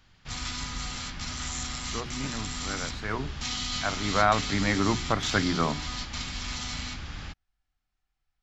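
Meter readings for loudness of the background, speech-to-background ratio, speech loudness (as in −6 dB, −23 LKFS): −33.5 LKFS, 4.5 dB, −29.0 LKFS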